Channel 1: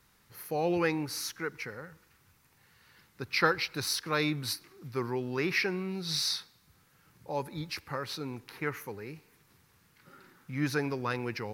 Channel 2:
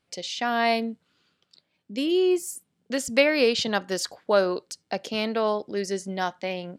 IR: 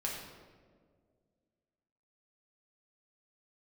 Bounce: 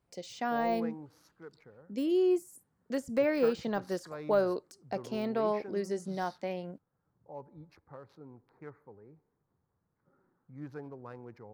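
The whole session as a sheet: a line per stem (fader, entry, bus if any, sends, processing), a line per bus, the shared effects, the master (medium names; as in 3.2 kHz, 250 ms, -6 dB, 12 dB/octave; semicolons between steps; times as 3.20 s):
-12.5 dB, 0.00 s, no send, local Wiener filter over 15 samples; FFT filter 360 Hz 0 dB, 670 Hz +4 dB, 2.8 kHz -13 dB
-4.5 dB, 0.00 s, no send, de-esser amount 85%; peaking EQ 3.3 kHz -10.5 dB 1.8 oct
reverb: none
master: none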